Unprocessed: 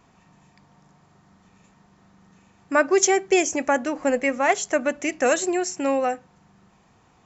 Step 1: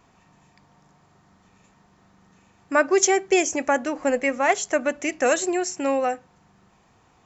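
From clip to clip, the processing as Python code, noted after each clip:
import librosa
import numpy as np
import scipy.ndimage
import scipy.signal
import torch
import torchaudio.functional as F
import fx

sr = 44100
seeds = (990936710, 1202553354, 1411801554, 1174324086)

y = fx.peak_eq(x, sr, hz=180.0, db=-3.5, octaves=0.87)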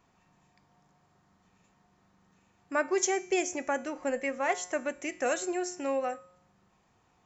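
y = fx.comb_fb(x, sr, f0_hz=180.0, decay_s=0.66, harmonics='all', damping=0.0, mix_pct=60)
y = y * 10.0 ** (-2.0 / 20.0)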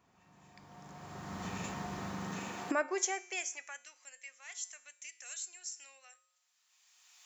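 y = fx.recorder_agc(x, sr, target_db=-23.5, rise_db_per_s=21.0, max_gain_db=30)
y = fx.filter_sweep_highpass(y, sr, from_hz=60.0, to_hz=3900.0, start_s=1.97, end_s=3.96, q=0.73)
y = y * 10.0 ** (-3.5 / 20.0)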